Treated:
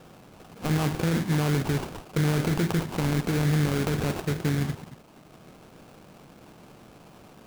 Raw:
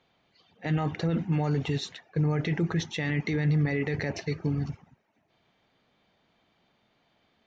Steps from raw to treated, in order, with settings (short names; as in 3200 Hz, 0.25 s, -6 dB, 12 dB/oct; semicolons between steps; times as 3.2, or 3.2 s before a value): per-bin compression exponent 0.6; air absorption 51 m; sample-rate reducer 1900 Hz, jitter 20%